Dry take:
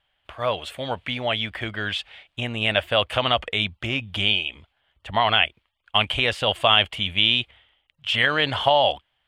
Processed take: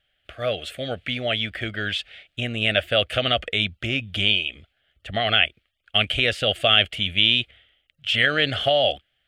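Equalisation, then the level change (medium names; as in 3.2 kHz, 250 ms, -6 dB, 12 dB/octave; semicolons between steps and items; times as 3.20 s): Butterworth band-stop 960 Hz, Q 1.6; +1.0 dB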